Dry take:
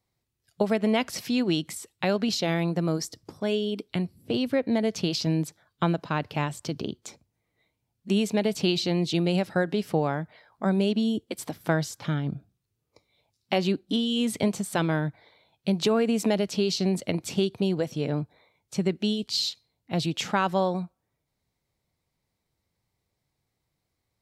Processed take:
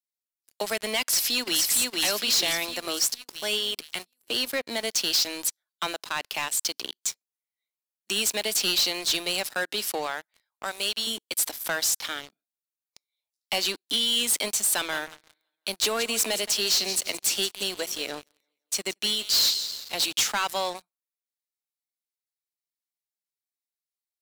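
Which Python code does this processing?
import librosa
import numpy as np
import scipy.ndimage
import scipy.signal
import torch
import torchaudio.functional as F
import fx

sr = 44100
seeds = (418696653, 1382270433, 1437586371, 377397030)

y = fx.echo_throw(x, sr, start_s=1.01, length_s=0.62, ms=460, feedback_pct=55, wet_db=-2.0)
y = fx.low_shelf(y, sr, hz=340.0, db=-11.5, at=(10.06, 11.07))
y = fx.echo_feedback(y, sr, ms=172, feedback_pct=51, wet_db=-16, at=(14.75, 19.94))
y = scipy.signal.sosfilt(scipy.signal.butter(6, 210.0, 'highpass', fs=sr, output='sos'), y)
y = np.diff(y, prepend=0.0)
y = fx.leveller(y, sr, passes=5)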